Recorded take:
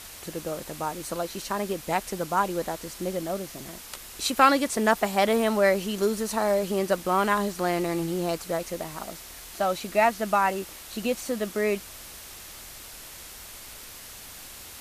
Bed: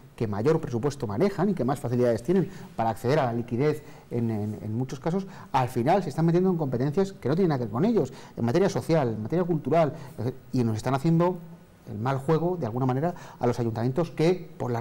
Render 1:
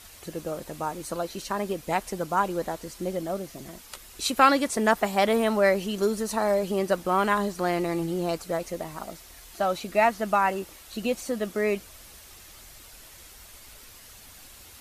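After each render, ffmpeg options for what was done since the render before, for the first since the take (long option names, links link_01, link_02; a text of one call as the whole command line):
ffmpeg -i in.wav -af "afftdn=noise_reduction=7:noise_floor=-44" out.wav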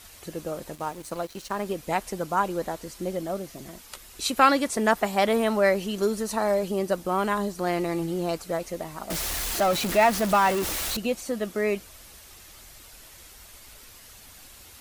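ffmpeg -i in.wav -filter_complex "[0:a]asettb=1/sr,asplit=3[link_01][link_02][link_03];[link_01]atrim=end=0.754[link_04];[link_02]atrim=start=0.75:end=1.66,asetpts=PTS-STARTPTS,afade=type=in:duration=0.004:curve=qsin,afade=type=out:start_time=0.906:duration=0.004:curve=qsin,aeval=exprs='sgn(val(0))*max(abs(val(0))-0.00596,0)':channel_layout=same[link_05];[link_03]atrim=start=1.656[link_06];[link_04][link_05]acrossfade=duration=0.004:curve1=hsin:curve2=qsin[link_07];[link_07][link_06]acrossfade=duration=0.004:curve1=qsin:curve2=hsin,asettb=1/sr,asplit=3[link_08][link_09][link_10];[link_08]atrim=end=6.684[link_11];[link_09]atrim=start=6.68:end=7.67,asetpts=PTS-STARTPTS,afade=type=in:duration=0.004:curve=qsin,afade=type=out:start_time=0.986:duration=0.004:curve=qsin,equalizer=frequency=1800:width_type=o:width=2.3:gain=-4[link_12];[link_10]atrim=start=7.666[link_13];[link_11][link_12]acrossfade=duration=0.004:curve1=hsin:curve2=qsin[link_14];[link_14][link_13]acrossfade=duration=0.004:curve1=qsin:curve2=hsin,asettb=1/sr,asplit=3[link_15][link_16][link_17];[link_15]atrim=end=9.104[link_18];[link_16]atrim=start=9.1:end=10.97,asetpts=PTS-STARTPTS,afade=type=in:duration=0.004:curve=qsin,afade=type=out:start_time=1.866:duration=0.004:curve=qsin,aeval=exprs='val(0)+0.5*0.0596*sgn(val(0))':channel_layout=same[link_19];[link_17]atrim=start=10.966[link_20];[link_18][link_19]acrossfade=duration=0.004:curve1=hsin:curve2=qsin[link_21];[link_21][link_20]acrossfade=duration=0.004:curve1=qsin:curve2=hsin" out.wav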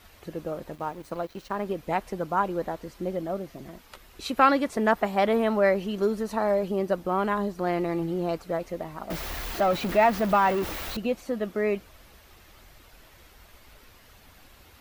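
ffmpeg -i in.wav -af "equalizer=frequency=8900:width_type=o:width=1.9:gain=-14.5" out.wav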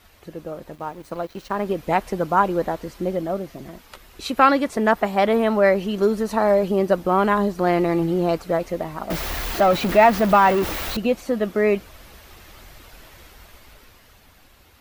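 ffmpeg -i in.wav -af "dynaudnorm=framelen=160:gausssize=17:maxgain=8dB" out.wav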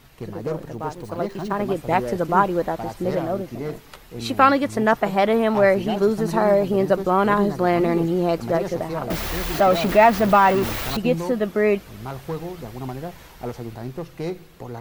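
ffmpeg -i in.wav -i bed.wav -filter_complex "[1:a]volume=-6dB[link_01];[0:a][link_01]amix=inputs=2:normalize=0" out.wav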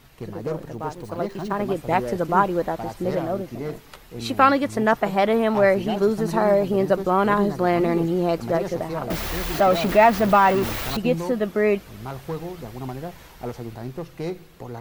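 ffmpeg -i in.wav -af "volume=-1dB" out.wav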